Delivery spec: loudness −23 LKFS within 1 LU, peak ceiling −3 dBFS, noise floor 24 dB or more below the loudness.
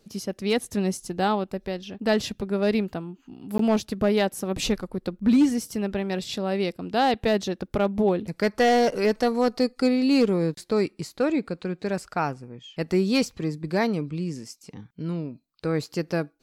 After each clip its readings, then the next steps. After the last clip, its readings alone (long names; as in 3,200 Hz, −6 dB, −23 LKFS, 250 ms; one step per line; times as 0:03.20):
share of clipped samples 0.4%; peaks flattened at −13.0 dBFS; number of dropouts 1; longest dropout 13 ms; integrated loudness −25.5 LKFS; sample peak −13.0 dBFS; target loudness −23.0 LKFS
→ clipped peaks rebuilt −13 dBFS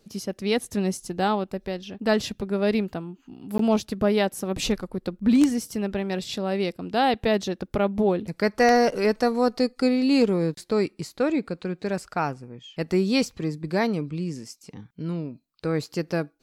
share of clipped samples 0.0%; number of dropouts 1; longest dropout 13 ms
→ repair the gap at 0:03.58, 13 ms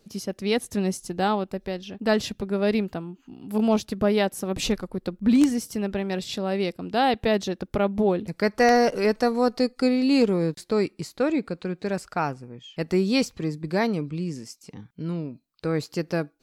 number of dropouts 0; integrated loudness −25.0 LKFS; sample peak −4.0 dBFS; target loudness −23.0 LKFS
→ level +2 dB
brickwall limiter −3 dBFS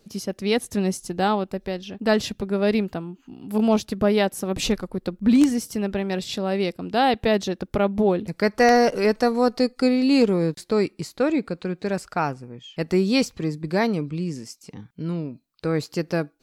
integrated loudness −23.0 LKFS; sample peak −3.0 dBFS; background noise floor −63 dBFS